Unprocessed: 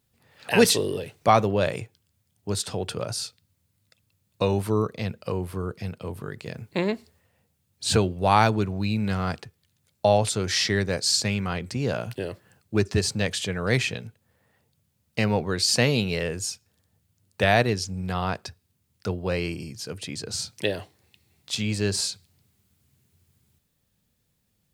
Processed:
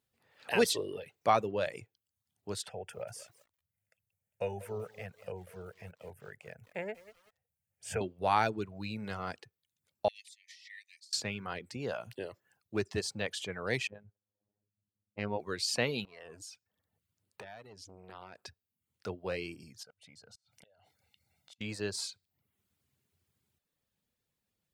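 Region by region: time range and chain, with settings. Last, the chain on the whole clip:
2.69–8.01 fixed phaser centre 1100 Hz, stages 6 + lo-fi delay 0.191 s, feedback 35%, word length 7-bit, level -12 dB
10.08–11.13 gate -21 dBFS, range -14 dB + Chebyshev high-pass 1800 Hz, order 10 + negative-ratio compressor -44 dBFS
13.87–15.4 low-pass opened by the level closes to 350 Hz, open at -22 dBFS + robotiser 103 Hz + air absorption 200 m
16.05–18.42 compressor 8:1, threshold -32 dBFS + core saturation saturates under 840 Hz
19.83–21.61 flipped gate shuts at -20 dBFS, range -26 dB + comb 1.4 ms, depth 74% + compressor 2:1, threshold -54 dBFS
whole clip: reverb removal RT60 0.55 s; tone controls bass -8 dB, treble -4 dB; gain -7.5 dB

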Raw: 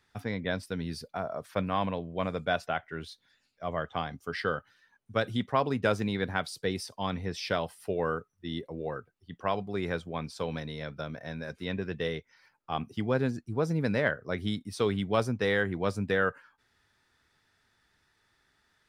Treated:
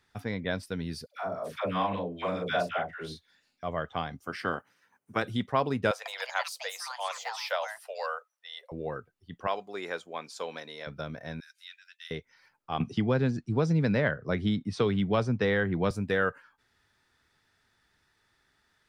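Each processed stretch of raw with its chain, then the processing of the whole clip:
1.06–3.63 low shelf 91 Hz -11.5 dB + doubler 39 ms -4.5 dB + dispersion lows, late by 0.1 s, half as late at 780 Hz
4.23–5.22 spectral limiter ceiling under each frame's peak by 15 dB + HPF 120 Hz + bell 3800 Hz -11 dB 0.86 oct
5.91–8.72 steep high-pass 520 Hz 72 dB/oct + echoes that change speed 0.145 s, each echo +5 st, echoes 2, each echo -6 dB
9.47–10.87 HPF 450 Hz + bell 6900 Hz +8.5 dB 0.21 oct
11.4–12.11 steep high-pass 1400 Hz 72 dB/oct + bell 1800 Hz -11.5 dB 1.6 oct + mismatched tape noise reduction encoder only
12.8–15.91 Bessel low-pass 5200 Hz, order 4 + bell 150 Hz +5 dB 0.97 oct + three-band squash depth 70%
whole clip: dry

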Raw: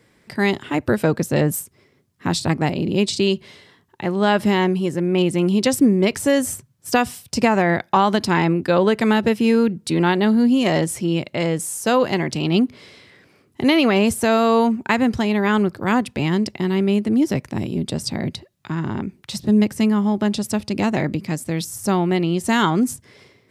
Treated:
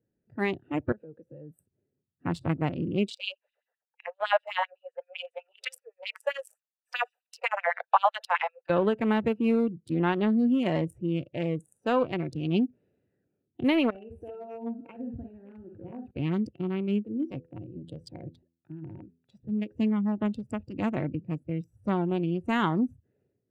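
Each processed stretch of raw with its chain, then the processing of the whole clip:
0.92–1.59 compressor 10:1, threshold -25 dBFS + low shelf 320 Hz -8.5 dB
3.1–8.7 steep high-pass 460 Hz 96 dB/oct + LFO high-pass sine 7.8 Hz 600–3900 Hz
13.9–16.11 compressor 3:1, threshold -28 dBFS + tapped delay 47/60/115/205/443 ms -7/-6/-18.5/-16.5/-14 dB
17.05–19.76 de-hum 83.43 Hz, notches 6 + de-esser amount 25% + low shelf 360 Hz -7.5 dB
whole clip: Wiener smoothing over 41 samples; spectral noise reduction 13 dB; EQ curve 2600 Hz 0 dB, 5200 Hz -14 dB, 12000 Hz -8 dB; gain -7 dB

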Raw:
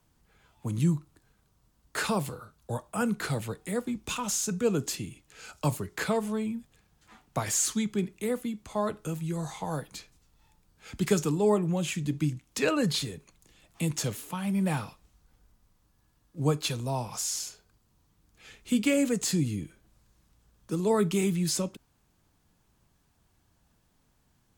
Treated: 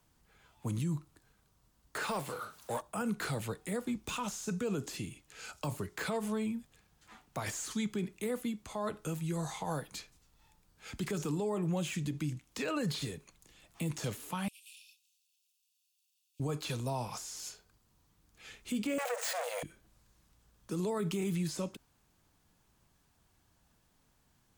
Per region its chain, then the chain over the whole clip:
2.03–2.81 HPF 600 Hz 6 dB/oct + power-law curve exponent 0.7
14.48–16.4 minimum comb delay 1.1 ms + steep high-pass 2500 Hz 96 dB/oct + compressor 2.5:1, threshold -56 dBFS
18.98–19.63 high shelf 8600 Hz +9 dB + sample leveller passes 5 + rippled Chebyshev high-pass 470 Hz, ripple 6 dB
whole clip: de-esser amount 85%; low shelf 490 Hz -3.5 dB; limiter -26.5 dBFS

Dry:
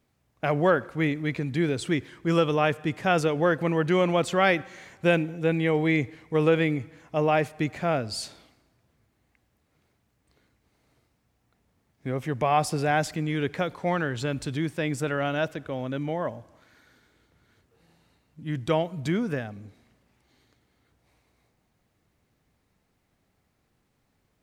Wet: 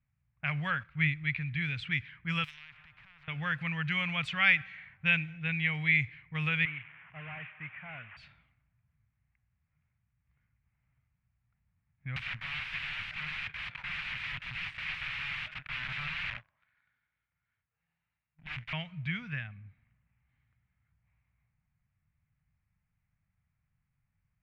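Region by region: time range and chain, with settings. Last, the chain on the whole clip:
0.83–1.24 low shelf 130 Hz +11.5 dB + upward expander, over -39 dBFS
2.44–3.28 median filter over 5 samples + compressor 5:1, threshold -36 dBFS + spectral compressor 10:1
6.65–8.17 delta modulation 16 kbps, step -37.5 dBFS + HPF 540 Hz 6 dB/oct
12.16–18.73 tone controls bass -13 dB, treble +11 dB + sample leveller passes 3 + wrapped overs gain 25.5 dB
whole clip: low-pass opened by the level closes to 980 Hz, open at -18.5 dBFS; EQ curve 150 Hz 0 dB, 370 Hz -30 dB, 2400 Hz +10 dB, 6600 Hz -13 dB; gain -4 dB

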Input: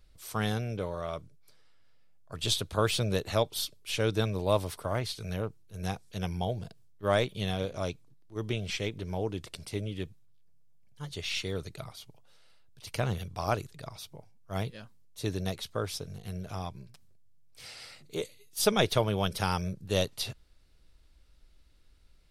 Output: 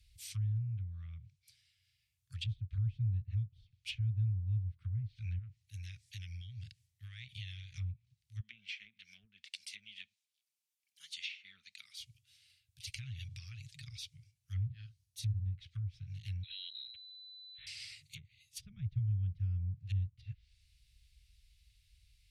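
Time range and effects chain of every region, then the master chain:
5.38–7.78 bell 1900 Hz +7 dB 0.3 oct + compressor 5:1, threshold -39 dBFS
8.4–11.99 elliptic high-pass 220 Hz + bell 340 Hz -2 dB 0.5 oct
12.89–13.88 comb 7.1 ms, depth 43% + compressor 4:1, threshold -39 dBFS + mismatched tape noise reduction encoder only
14.65–15.45 bell 2400 Hz -6 dB 1 oct + notch 7400 Hz, Q 9.2 + doubler 47 ms -6 dB
16.43–17.67 compressor 4:1, threshold -43 dBFS + inverted band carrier 4000 Hz
whole clip: HPF 46 Hz 12 dB/oct; treble ducked by the level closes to 350 Hz, closed at -28.5 dBFS; elliptic band-stop 110–2300 Hz, stop band 50 dB; gain +1.5 dB

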